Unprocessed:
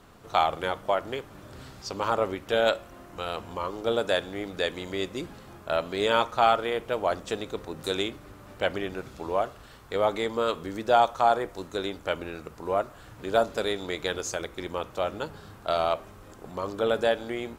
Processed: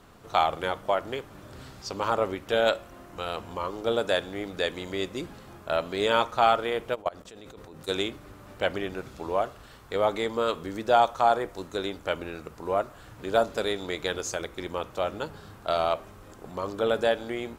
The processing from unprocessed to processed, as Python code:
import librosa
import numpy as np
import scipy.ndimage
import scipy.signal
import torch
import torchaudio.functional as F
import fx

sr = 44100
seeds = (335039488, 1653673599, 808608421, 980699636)

y = fx.level_steps(x, sr, step_db=23, at=(6.94, 7.87), fade=0.02)